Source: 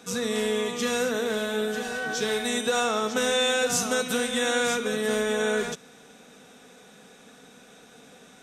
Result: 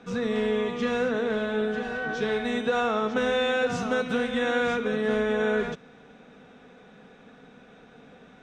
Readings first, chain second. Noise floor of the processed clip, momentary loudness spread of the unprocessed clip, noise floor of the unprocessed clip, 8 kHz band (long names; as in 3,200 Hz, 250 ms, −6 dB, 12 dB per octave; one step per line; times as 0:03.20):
−52 dBFS, 6 LU, −52 dBFS, −18.5 dB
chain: low-pass filter 2,500 Hz 12 dB per octave
low-shelf EQ 120 Hz +9 dB